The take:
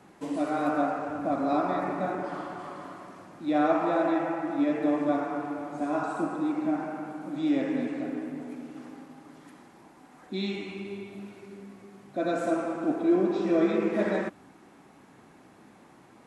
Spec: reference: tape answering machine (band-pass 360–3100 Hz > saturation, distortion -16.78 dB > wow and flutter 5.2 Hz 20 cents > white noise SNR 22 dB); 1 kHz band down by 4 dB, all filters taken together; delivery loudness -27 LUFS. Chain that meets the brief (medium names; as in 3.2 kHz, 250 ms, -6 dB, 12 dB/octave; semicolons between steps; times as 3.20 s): band-pass 360–3100 Hz; peaking EQ 1 kHz -6 dB; saturation -23.5 dBFS; wow and flutter 5.2 Hz 20 cents; white noise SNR 22 dB; trim +7.5 dB